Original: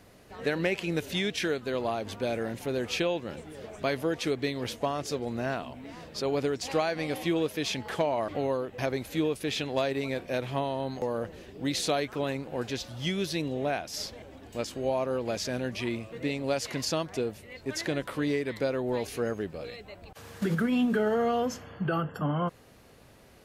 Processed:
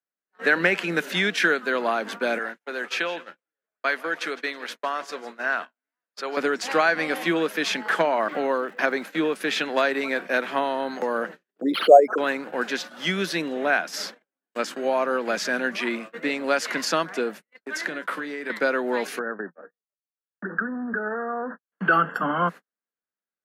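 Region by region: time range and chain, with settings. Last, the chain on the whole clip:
2.38–6.37 s: high-pass 1.2 kHz 6 dB/octave + tilt EQ -1.5 dB/octave + feedback delay 163 ms, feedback 45%, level -16.5 dB
8.14–9.38 s: treble shelf 7.6 kHz -7 dB + crackle 270 per s -50 dBFS
11.61–12.18 s: resonances exaggerated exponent 3 + peaking EQ 690 Hz +15 dB 1.2 oct + decimation joined by straight lines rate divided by 6×
17.55–18.50 s: compression 12:1, threshold -33 dBFS + doubling 32 ms -13.5 dB
19.19–21.72 s: expander -35 dBFS + compression 10:1, threshold -31 dBFS + brick-wall FIR band-pass 170–1900 Hz
whole clip: gate -40 dBFS, range -50 dB; steep high-pass 170 Hz 72 dB/octave; peaking EQ 1.5 kHz +14.5 dB 1 oct; trim +3 dB

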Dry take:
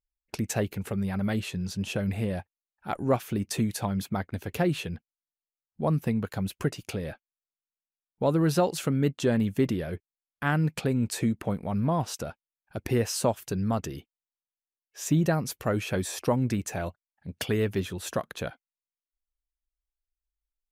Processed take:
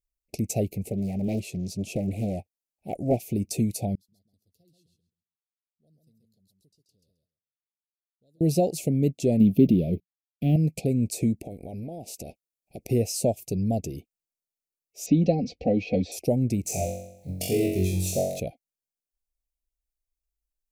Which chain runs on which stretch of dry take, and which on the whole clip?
0.90–3.17 s: bass shelf 69 Hz -8.5 dB + loudspeaker Doppler distortion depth 0.77 ms
3.95–8.41 s: inverse Chebyshev high-pass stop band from 2.6 kHz + distance through air 460 m + feedback delay 133 ms, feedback 16%, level -4.5 dB
9.40–10.56 s: companding laws mixed up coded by mu + FFT filter 120 Hz 0 dB, 180 Hz +9 dB, 680 Hz -3 dB, 970 Hz -23 dB, 3.3 kHz +6 dB, 7.4 kHz -18 dB, 13 kHz -2 dB
11.45–12.89 s: spectral peaks clipped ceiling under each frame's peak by 12 dB + compression, threshold -35 dBFS
15.06–16.12 s: steep low-pass 4.7 kHz + comb 4 ms, depth 96% + three bands compressed up and down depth 40%
16.63–18.40 s: companding laws mixed up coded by mu + peaking EQ 190 Hz -4.5 dB 2.9 oct + flutter echo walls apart 3.7 m, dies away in 0.74 s
whole clip: elliptic band-stop 700–2400 Hz, stop band 40 dB; peaking EQ 3.2 kHz -12.5 dB 0.7 oct; trim +2.5 dB

